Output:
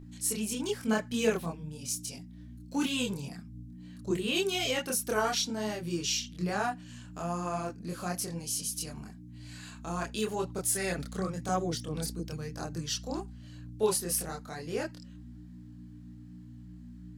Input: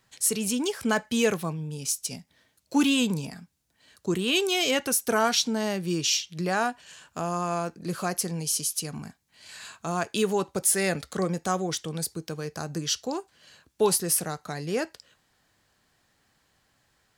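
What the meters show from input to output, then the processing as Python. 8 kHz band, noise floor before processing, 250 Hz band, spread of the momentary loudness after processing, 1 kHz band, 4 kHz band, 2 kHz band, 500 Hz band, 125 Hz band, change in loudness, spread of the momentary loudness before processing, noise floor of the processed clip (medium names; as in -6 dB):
-6.0 dB, -70 dBFS, -5.5 dB, 20 LU, -5.5 dB, -6.0 dB, -6.0 dB, -5.0 dB, -3.5 dB, -5.5 dB, 13 LU, -48 dBFS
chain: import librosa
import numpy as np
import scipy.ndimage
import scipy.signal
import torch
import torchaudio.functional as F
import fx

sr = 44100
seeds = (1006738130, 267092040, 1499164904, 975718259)

y = fx.dmg_buzz(x, sr, base_hz=60.0, harmonics=5, level_db=-39.0, tilt_db=-4, odd_only=False)
y = fx.chorus_voices(y, sr, voices=4, hz=0.94, base_ms=26, depth_ms=3.0, mix_pct=50)
y = F.gain(torch.from_numpy(y), -3.0).numpy()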